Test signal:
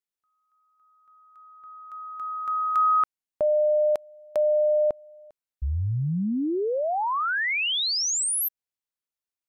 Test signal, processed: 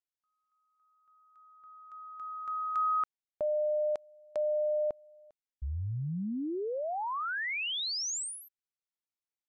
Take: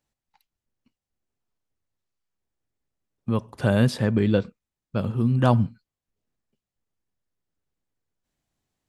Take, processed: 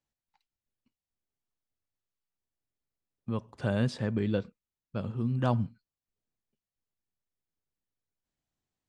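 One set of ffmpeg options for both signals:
-af "lowpass=f=8.4k:w=0.5412,lowpass=f=8.4k:w=1.3066,volume=-8.5dB"

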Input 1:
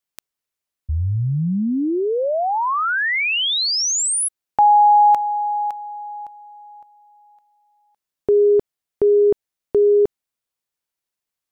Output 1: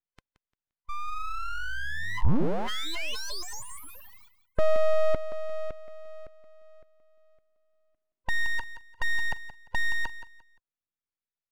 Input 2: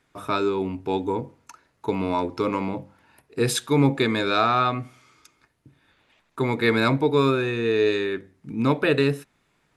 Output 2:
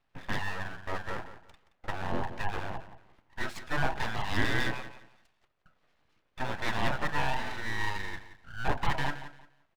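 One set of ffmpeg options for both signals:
-filter_complex "[0:a]afftfilt=real='real(if(lt(b,1008),b+24*(1-2*mod(floor(b/24),2)),b),0)':imag='imag(if(lt(b,1008),b+24*(1-2*mod(floor(b/24),2)),b),0)':win_size=2048:overlap=0.75,lowpass=1.4k,equalizer=f=660:w=0.34:g=-14.5,asplit=2[a][b];[b]aecho=0:1:174|348|522:0.224|0.056|0.014[c];[a][c]amix=inputs=2:normalize=0,aeval=exprs='abs(val(0))':c=same,volume=5.5dB"

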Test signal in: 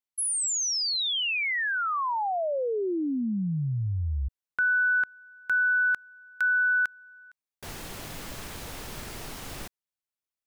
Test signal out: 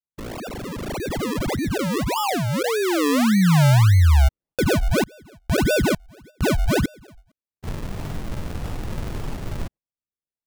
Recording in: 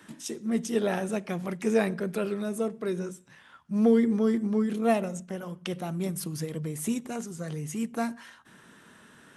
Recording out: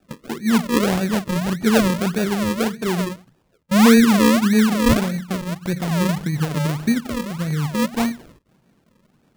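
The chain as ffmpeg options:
-af "agate=range=-14dB:threshold=-40dB:ratio=16:release=337:detection=rms,bass=f=250:g=10,treble=f=4k:g=-10,acrusher=samples=41:mix=1:aa=0.000001:lfo=1:lforange=41:lforate=1.7,volume=5dB"

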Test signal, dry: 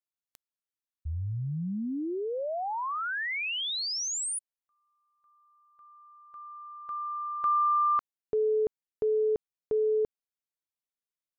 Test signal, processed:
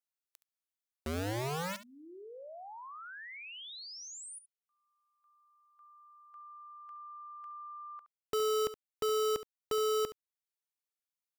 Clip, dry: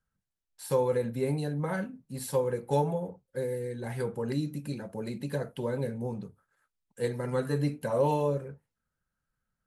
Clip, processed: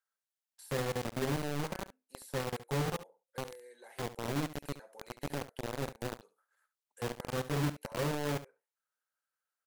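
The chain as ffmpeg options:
-filter_complex "[0:a]highshelf=f=4.6k:g=3,acrossover=split=460[a][b];[a]acrusher=bits=4:mix=0:aa=0.000001[c];[b]acompressor=threshold=-43dB:ratio=5:attack=0.67:release=832:knee=6:detection=peak[d];[c][d]amix=inputs=2:normalize=0,aecho=1:1:70:0.2,volume=-4dB"

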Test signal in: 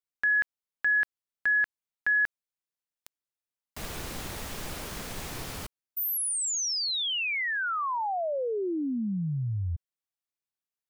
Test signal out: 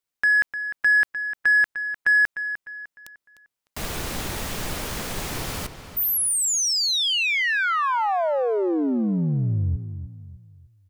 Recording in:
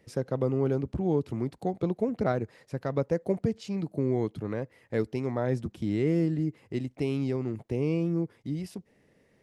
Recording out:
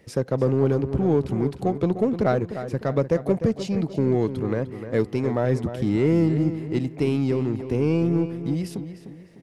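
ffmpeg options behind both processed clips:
-filter_complex "[0:a]asplit=2[a][b];[b]asoftclip=type=hard:threshold=-29.5dB,volume=-8dB[c];[a][c]amix=inputs=2:normalize=0,asplit=2[d][e];[e]adelay=302,lowpass=f=4.5k:p=1,volume=-10.5dB,asplit=2[f][g];[g]adelay=302,lowpass=f=4.5k:p=1,volume=0.4,asplit=2[h][i];[i]adelay=302,lowpass=f=4.5k:p=1,volume=0.4,asplit=2[j][k];[k]adelay=302,lowpass=f=4.5k:p=1,volume=0.4[l];[d][f][h][j][l]amix=inputs=5:normalize=0,volume=4.5dB"

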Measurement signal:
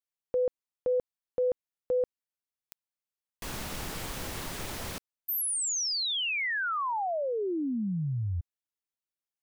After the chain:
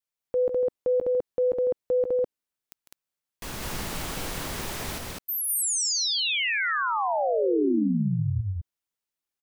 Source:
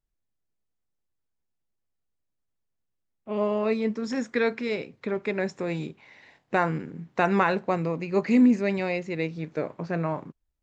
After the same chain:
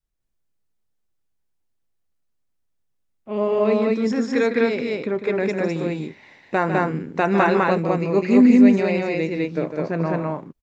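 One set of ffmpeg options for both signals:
-af "aecho=1:1:151.6|204.1:0.355|0.891,adynamicequalizer=threshold=0.0178:dfrequency=330:dqfactor=0.97:tfrequency=330:tqfactor=0.97:attack=5:release=100:ratio=0.375:range=2:mode=boostabove:tftype=bell,volume=1.5dB"

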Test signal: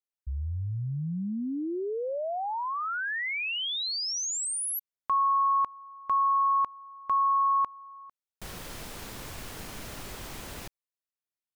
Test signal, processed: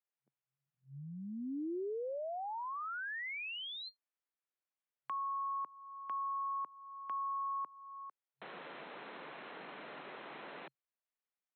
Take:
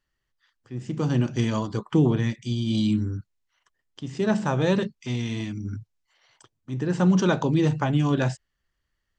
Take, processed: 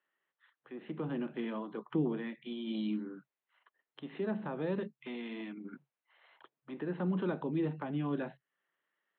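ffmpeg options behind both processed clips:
-filter_complex "[0:a]afftfilt=real='re*between(b*sr/4096,130,4200)':imag='im*between(b*sr/4096,130,4200)':win_size=4096:overlap=0.75,acrossover=split=340 3000:gain=0.126 1 0.0708[a][b][c];[a][b][c]amix=inputs=3:normalize=0,acrossover=split=300[d][e];[e]acompressor=threshold=-46dB:ratio=2.5:attack=1.9:release=426:knee=2.83:detection=peak[f];[d][f]amix=inputs=2:normalize=0,volume=1dB"

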